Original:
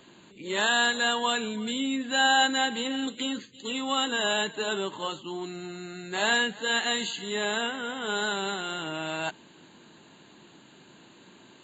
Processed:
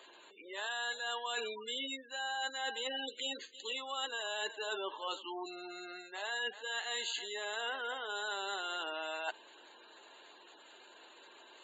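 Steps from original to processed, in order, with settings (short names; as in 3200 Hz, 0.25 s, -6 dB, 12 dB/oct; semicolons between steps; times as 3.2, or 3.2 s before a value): spectral gate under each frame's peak -20 dB strong; HPF 450 Hz 24 dB/oct; reverse; compressor 10:1, threshold -35 dBFS, peak gain reduction 16.5 dB; reverse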